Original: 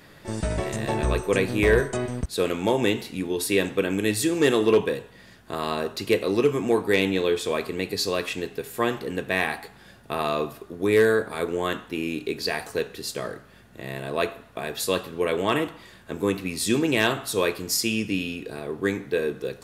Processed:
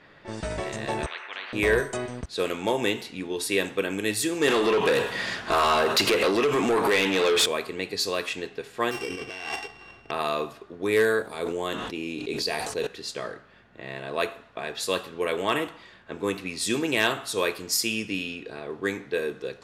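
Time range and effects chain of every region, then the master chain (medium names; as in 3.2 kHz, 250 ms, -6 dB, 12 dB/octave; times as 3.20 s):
1.06–1.53 s: Butterworth band-pass 1.8 kHz, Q 4.7 + spectrum-flattening compressor 10:1
4.48–7.46 s: bass shelf 220 Hz +11.5 dB + compression 16:1, threshold -26 dBFS + overdrive pedal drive 29 dB, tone 5.2 kHz, clips at -9.5 dBFS
8.91–10.11 s: sorted samples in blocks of 16 samples + compressor with a negative ratio -32 dBFS + comb 2.6 ms, depth 47%
11.22–12.87 s: peaking EQ 1.6 kHz -7 dB 1.2 oct + decay stretcher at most 24 dB/s
whole clip: bass shelf 340 Hz -8.5 dB; level-controlled noise filter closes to 2.8 kHz, open at -22.5 dBFS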